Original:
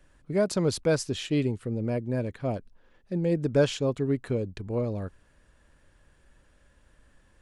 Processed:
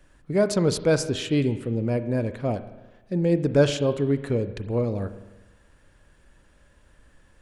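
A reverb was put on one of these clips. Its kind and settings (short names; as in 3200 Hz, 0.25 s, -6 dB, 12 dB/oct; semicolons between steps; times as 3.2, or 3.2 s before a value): spring tank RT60 1.1 s, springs 35/50 ms, chirp 40 ms, DRR 11 dB; gain +3.5 dB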